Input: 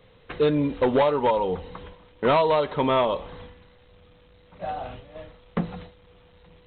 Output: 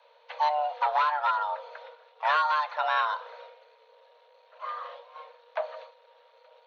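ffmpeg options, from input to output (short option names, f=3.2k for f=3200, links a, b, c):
-filter_complex "[0:a]asplit=2[a][b];[b]asetrate=66075,aresample=44100,atempo=0.66742,volume=-18dB[c];[a][c]amix=inputs=2:normalize=0,afreqshift=450,volume=-5dB"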